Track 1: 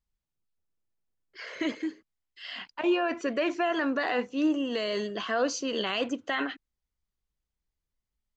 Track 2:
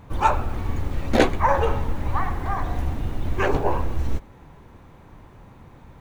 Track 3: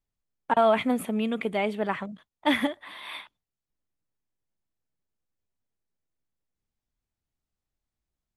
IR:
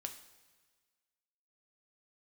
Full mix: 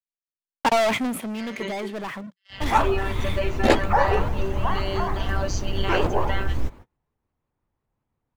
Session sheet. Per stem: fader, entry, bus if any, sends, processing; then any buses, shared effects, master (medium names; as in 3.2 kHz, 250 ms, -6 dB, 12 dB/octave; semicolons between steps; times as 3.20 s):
+2.0 dB, 0.00 s, no send, robot voice 194 Hz
-0.5 dB, 2.50 s, no send, vibrato with a chosen wave saw up 5.6 Hz, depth 250 cents
-3.5 dB, 0.15 s, no send, waveshaping leveller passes 5; auto duck -12 dB, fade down 0.70 s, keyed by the first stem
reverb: none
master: gate -38 dBFS, range -32 dB; peaking EQ 180 Hz -3.5 dB 0.22 oct